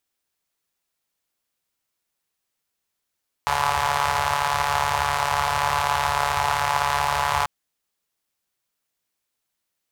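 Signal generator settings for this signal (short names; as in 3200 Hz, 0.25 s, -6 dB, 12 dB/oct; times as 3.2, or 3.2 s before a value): four-cylinder engine model, steady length 3.99 s, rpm 4300, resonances 83/910 Hz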